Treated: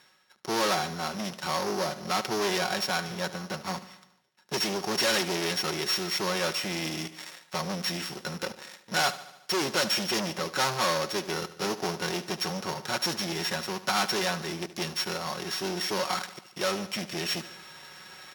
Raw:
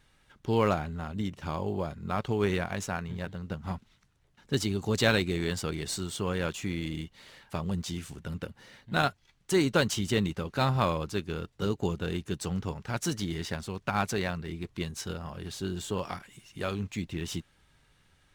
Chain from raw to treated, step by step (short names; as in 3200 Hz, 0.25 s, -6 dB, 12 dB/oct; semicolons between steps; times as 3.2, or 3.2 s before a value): sample sorter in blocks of 8 samples; comb 5.4 ms, depth 52%; sample leveller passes 3; reverse; upward compressor, threshold -21 dBFS; reverse; soft clip -21 dBFS, distortion -10 dB; weighting filter A; on a send: feedback echo 73 ms, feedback 59%, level -15.5 dB